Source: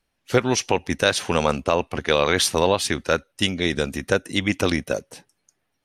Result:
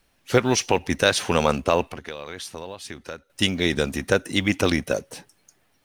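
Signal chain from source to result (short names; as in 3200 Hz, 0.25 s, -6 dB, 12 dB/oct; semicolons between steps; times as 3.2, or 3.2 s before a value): G.711 law mismatch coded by mu; 1.82–3.3 compressor 5:1, threshold -34 dBFS, peak gain reduction 18.5 dB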